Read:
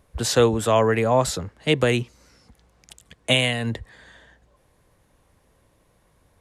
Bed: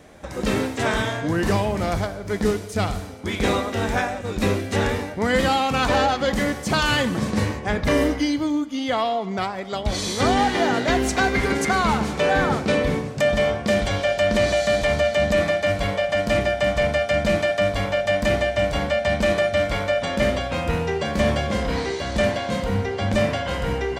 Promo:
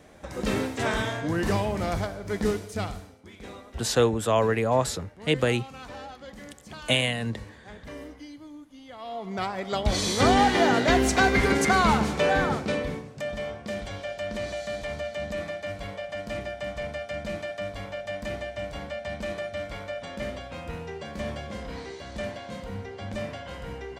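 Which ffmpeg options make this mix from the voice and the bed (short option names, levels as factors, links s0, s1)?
-filter_complex "[0:a]adelay=3600,volume=0.631[s0];[1:a]volume=6.68,afade=t=out:st=2.55:d=0.74:silence=0.141254,afade=t=in:st=8.98:d=0.74:silence=0.0891251,afade=t=out:st=11.88:d=1.18:silence=0.237137[s1];[s0][s1]amix=inputs=2:normalize=0"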